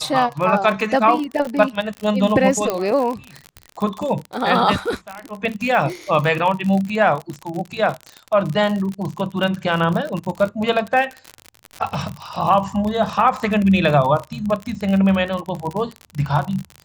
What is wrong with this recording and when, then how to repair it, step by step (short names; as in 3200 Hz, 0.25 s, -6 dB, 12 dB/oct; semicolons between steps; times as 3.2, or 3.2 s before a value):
crackle 51/s -23 dBFS
2.7 pop -7 dBFS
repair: de-click